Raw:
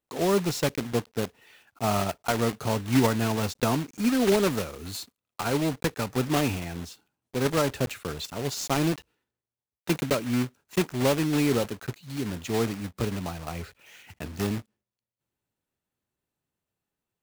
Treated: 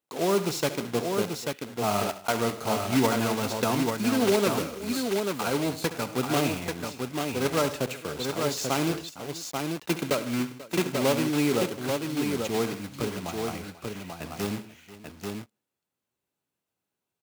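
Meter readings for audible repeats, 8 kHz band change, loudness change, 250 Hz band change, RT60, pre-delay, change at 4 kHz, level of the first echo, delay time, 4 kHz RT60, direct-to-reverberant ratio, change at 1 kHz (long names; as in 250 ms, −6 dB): 5, +1.5 dB, −0.5 dB, −0.5 dB, no reverb audible, no reverb audible, +1.5 dB, −13.5 dB, 68 ms, no reverb audible, no reverb audible, +1.5 dB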